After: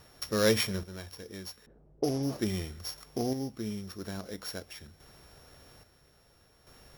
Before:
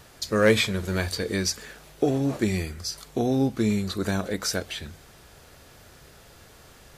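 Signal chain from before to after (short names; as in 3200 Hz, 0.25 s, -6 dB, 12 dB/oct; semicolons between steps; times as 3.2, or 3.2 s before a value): sample sorter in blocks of 8 samples; 1.66–2.23 low-pass opened by the level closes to 330 Hz, open at -18.5 dBFS; random-step tremolo 1.2 Hz, depth 75%; gain -4.5 dB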